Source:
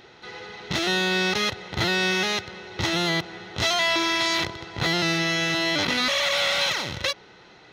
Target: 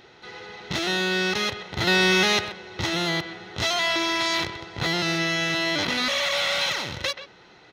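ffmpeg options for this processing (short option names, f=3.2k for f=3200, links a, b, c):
-filter_complex "[0:a]asettb=1/sr,asplit=3[a][b][c];[a]atrim=end=1.874[d];[b]atrim=start=1.87:end=2.48,asetpts=PTS-STARTPTS,afade=t=in:d=0.004:c=qsin,afade=t=out:st=0.606:d=0.004:c=qsin,acontrast=49[e];[c]atrim=start=2.476[f];[d][e]acrossfade=d=0.004:c1=hsin:c2=qsin[g];[g][f]acrossfade=d=0.004:c1=qsin:c2=hsin,asplit=2[h][i];[i]adelay=130,highpass=300,lowpass=3.4k,asoftclip=type=hard:threshold=-13dB,volume=-11dB[j];[h][j]amix=inputs=2:normalize=0,volume=-1.5dB"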